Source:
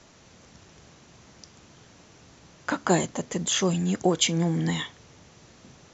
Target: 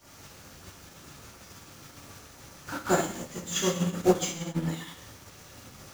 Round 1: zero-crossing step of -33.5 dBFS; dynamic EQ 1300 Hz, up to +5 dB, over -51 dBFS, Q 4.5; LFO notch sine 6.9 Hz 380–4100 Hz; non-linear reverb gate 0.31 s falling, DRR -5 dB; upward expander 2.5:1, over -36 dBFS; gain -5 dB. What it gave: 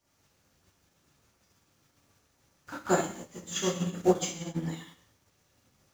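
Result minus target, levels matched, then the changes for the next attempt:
zero-crossing step: distortion -8 dB
change: zero-crossing step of -24 dBFS

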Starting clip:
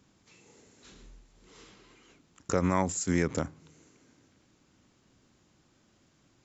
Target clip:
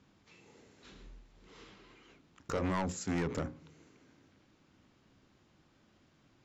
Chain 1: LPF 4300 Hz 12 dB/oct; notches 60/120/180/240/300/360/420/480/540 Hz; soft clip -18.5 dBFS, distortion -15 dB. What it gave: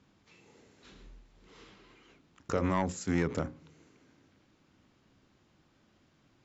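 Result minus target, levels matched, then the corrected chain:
soft clip: distortion -8 dB
LPF 4300 Hz 12 dB/oct; notches 60/120/180/240/300/360/420/480/540 Hz; soft clip -27.5 dBFS, distortion -7 dB

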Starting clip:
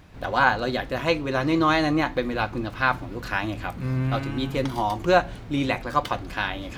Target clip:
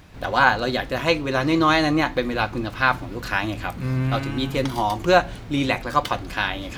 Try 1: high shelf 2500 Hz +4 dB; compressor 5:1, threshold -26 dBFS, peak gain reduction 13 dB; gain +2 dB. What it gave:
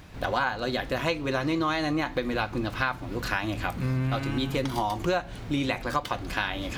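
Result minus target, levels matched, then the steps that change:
compressor: peak gain reduction +13 dB
remove: compressor 5:1, threshold -26 dBFS, peak gain reduction 13 dB

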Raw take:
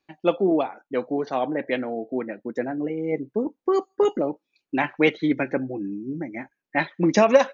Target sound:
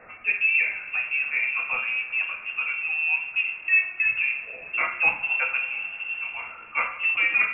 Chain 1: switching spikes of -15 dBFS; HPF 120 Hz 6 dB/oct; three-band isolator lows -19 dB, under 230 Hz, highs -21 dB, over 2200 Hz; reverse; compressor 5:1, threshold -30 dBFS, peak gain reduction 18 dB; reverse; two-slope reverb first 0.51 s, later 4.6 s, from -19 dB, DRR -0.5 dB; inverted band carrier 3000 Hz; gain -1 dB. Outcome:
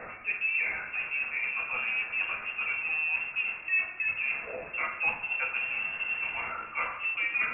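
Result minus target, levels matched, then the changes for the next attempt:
compressor: peak gain reduction +8 dB; switching spikes: distortion +8 dB
change: switching spikes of -23.5 dBFS; change: compressor 5:1, threshold -20 dBFS, peak gain reduction 10 dB

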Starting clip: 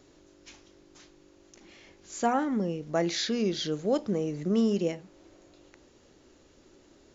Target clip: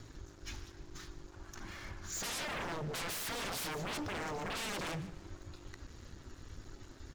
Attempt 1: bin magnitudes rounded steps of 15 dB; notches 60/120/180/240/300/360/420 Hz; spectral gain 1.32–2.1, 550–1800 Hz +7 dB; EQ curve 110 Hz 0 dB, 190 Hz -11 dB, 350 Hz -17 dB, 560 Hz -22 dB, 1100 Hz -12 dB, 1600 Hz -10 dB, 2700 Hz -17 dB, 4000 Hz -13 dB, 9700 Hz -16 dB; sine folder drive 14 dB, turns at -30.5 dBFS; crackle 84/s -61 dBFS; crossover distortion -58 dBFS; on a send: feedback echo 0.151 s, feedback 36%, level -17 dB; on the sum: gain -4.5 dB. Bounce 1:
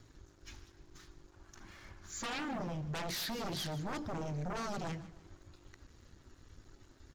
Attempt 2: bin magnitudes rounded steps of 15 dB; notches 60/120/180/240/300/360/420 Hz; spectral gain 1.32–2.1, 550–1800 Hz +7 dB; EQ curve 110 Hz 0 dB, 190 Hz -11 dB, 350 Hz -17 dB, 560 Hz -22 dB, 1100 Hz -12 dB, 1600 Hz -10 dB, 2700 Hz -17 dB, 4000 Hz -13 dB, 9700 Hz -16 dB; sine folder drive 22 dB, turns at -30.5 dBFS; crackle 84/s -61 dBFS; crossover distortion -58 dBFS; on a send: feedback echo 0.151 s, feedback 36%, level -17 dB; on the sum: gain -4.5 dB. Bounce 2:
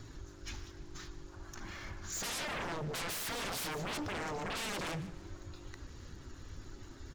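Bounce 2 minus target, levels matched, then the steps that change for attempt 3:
crossover distortion: distortion -8 dB
change: crossover distortion -50 dBFS

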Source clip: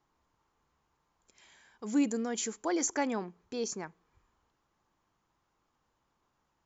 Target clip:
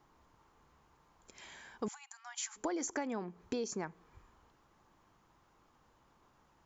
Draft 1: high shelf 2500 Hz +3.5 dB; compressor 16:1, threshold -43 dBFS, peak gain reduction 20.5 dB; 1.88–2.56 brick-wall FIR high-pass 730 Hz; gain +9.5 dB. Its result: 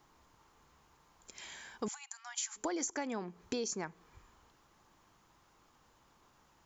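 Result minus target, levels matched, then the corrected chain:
4000 Hz band +3.0 dB
high shelf 2500 Hz -4.5 dB; compressor 16:1, threshold -43 dBFS, peak gain reduction 20 dB; 1.88–2.56 brick-wall FIR high-pass 730 Hz; gain +9.5 dB

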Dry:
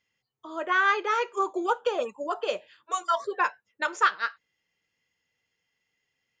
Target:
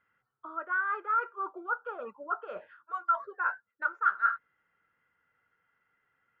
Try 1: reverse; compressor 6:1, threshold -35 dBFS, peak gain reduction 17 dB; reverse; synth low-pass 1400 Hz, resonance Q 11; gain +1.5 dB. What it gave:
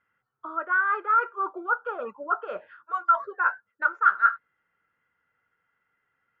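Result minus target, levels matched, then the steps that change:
compressor: peak gain reduction -6.5 dB
change: compressor 6:1, threshold -43 dBFS, peak gain reduction 24 dB

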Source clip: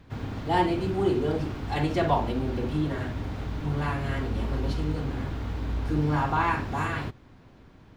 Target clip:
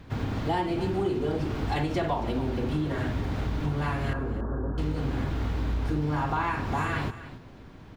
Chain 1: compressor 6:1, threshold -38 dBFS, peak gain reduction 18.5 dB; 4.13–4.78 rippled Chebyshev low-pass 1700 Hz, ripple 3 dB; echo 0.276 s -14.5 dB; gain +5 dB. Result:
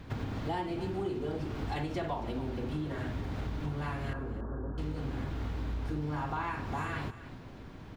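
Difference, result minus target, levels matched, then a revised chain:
compressor: peak gain reduction +7 dB
compressor 6:1, threshold -29.5 dBFS, peak gain reduction 11.5 dB; 4.13–4.78 rippled Chebyshev low-pass 1700 Hz, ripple 3 dB; echo 0.276 s -14.5 dB; gain +5 dB

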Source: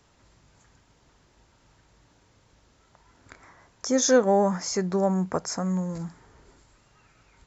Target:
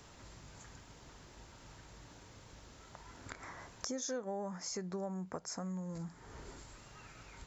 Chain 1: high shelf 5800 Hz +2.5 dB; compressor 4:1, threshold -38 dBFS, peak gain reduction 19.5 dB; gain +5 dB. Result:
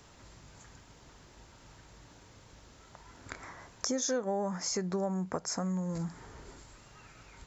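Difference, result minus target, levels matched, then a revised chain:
compressor: peak gain reduction -7.5 dB
high shelf 5800 Hz +2.5 dB; compressor 4:1, threshold -48 dBFS, peak gain reduction 27 dB; gain +5 dB

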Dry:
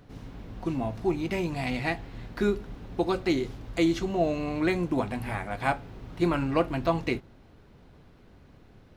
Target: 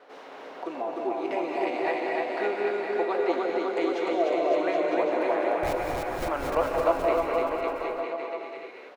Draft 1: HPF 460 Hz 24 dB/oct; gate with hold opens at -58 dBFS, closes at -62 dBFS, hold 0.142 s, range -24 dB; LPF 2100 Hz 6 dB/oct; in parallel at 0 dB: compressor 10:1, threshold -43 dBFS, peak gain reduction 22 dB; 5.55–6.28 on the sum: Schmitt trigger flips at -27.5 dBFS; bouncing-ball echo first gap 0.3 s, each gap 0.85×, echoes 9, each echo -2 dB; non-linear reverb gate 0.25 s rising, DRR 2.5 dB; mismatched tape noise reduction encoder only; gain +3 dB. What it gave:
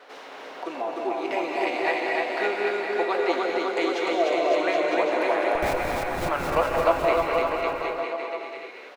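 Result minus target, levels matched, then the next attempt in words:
2000 Hz band +4.0 dB
HPF 460 Hz 24 dB/oct; gate with hold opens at -58 dBFS, closes at -62 dBFS, hold 0.142 s, range -24 dB; LPF 650 Hz 6 dB/oct; in parallel at 0 dB: compressor 10:1, threshold -43 dBFS, peak gain reduction 19.5 dB; 5.55–6.28 on the sum: Schmitt trigger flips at -27.5 dBFS; bouncing-ball echo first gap 0.3 s, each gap 0.85×, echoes 9, each echo -2 dB; non-linear reverb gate 0.25 s rising, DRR 2.5 dB; mismatched tape noise reduction encoder only; gain +3 dB

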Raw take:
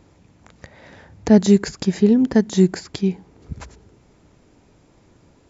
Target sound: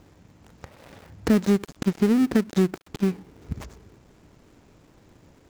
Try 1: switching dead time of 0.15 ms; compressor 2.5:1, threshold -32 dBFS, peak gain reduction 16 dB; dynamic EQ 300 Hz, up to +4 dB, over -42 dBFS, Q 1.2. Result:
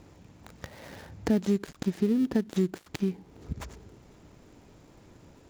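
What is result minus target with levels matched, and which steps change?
compressor: peak gain reduction +5.5 dB; switching dead time: distortion -6 dB
change: switching dead time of 0.35 ms; change: compressor 2.5:1, threshold -22.5 dBFS, peak gain reduction 10.5 dB

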